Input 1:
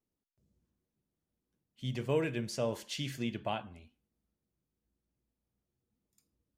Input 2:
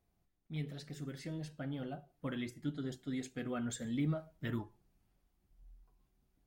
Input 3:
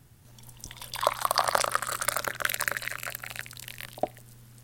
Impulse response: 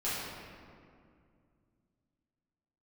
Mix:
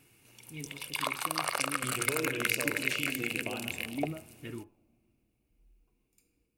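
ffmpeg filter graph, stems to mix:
-filter_complex "[0:a]highshelf=frequency=9700:gain=6.5,acompressor=threshold=-38dB:ratio=8,volume=-2dB,asplit=2[link_01][link_02];[link_02]volume=-9.5dB[link_03];[1:a]volume=-6dB[link_04];[2:a]highpass=frequency=340:poles=1,equalizer=frequency=660:width_type=o:width=2:gain=-3,alimiter=limit=-12dB:level=0:latency=1:release=101,volume=-2.5dB[link_05];[3:a]atrim=start_sample=2205[link_06];[link_03][link_06]afir=irnorm=-1:irlink=0[link_07];[link_01][link_04][link_05][link_07]amix=inputs=4:normalize=0,superequalizer=6b=2.24:7b=2:12b=3.55:16b=1.41"

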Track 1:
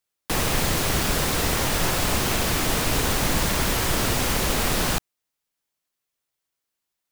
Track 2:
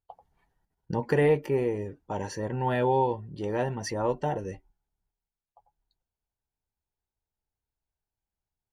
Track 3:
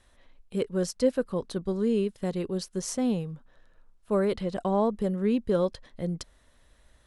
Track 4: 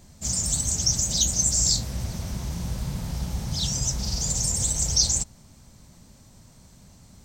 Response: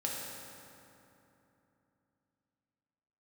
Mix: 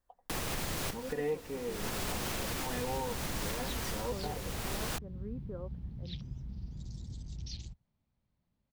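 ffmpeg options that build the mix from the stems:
-filter_complex "[0:a]afade=type=in:start_time=1.66:duration=0.25:silence=0.375837,afade=type=out:start_time=3.59:duration=0.61:silence=0.446684[link_01];[1:a]aecho=1:1:4.1:0.71,volume=-13dB,asplit=2[link_02][link_03];[2:a]lowpass=frequency=1600:width=0.5412,lowpass=frequency=1600:width=1.3066,volume=-19dB[link_04];[3:a]afwtdn=0.0398,lowpass=frequency=3600:width=0.5412,lowpass=frequency=3600:width=1.3066,adelay=2500,volume=-12.5dB[link_05];[link_03]apad=whole_len=313894[link_06];[link_01][link_06]sidechaincompress=threshold=-50dB:ratio=5:attack=5.4:release=752[link_07];[link_07][link_02][link_04][link_05]amix=inputs=4:normalize=0,alimiter=level_in=1dB:limit=-24dB:level=0:latency=1:release=219,volume=-1dB"

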